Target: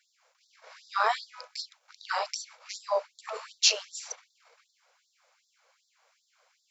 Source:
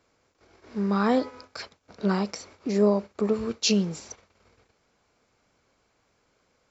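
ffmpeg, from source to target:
-af "afftfilt=real='re*gte(b*sr/1024,430*pow(3500/430,0.5+0.5*sin(2*PI*2.6*pts/sr)))':imag='im*gte(b*sr/1024,430*pow(3500/430,0.5+0.5*sin(2*PI*2.6*pts/sr)))':win_size=1024:overlap=0.75,volume=1.5"

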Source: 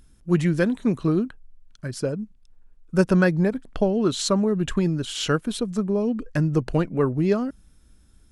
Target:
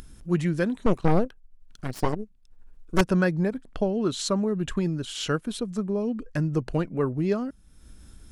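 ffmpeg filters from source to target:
-filter_complex "[0:a]asettb=1/sr,asplit=3[s0][s1][s2];[s0]atrim=end=0.864[s3];[s1]atrim=start=0.86:end=3.01,asetpts=PTS-STARTPTS,afade=t=in:d=0.004:c=qsin,afade=t=out:st=2.146:d=0.004:c=qsin,aeval=exprs='0.473*(cos(1*acos(clip(val(0)/0.473,-1,1)))-cos(1*PI/2))+0.0299*(cos(3*acos(clip(val(0)/0.473,-1,1)))-cos(3*PI/2))+0.168*(cos(8*acos(clip(val(0)/0.473,-1,1)))-cos(8*PI/2))':c=same[s4];[s2]atrim=start=3.006[s5];[s3][s4]acrossfade=d=0.004:c1=hsin:c2=qsin[s6];[s6][s5]acrossfade=d=0.004:c1=qsin:c2=hsin,acompressor=mode=upward:threshold=0.0316:ratio=2.5,volume=0.631"

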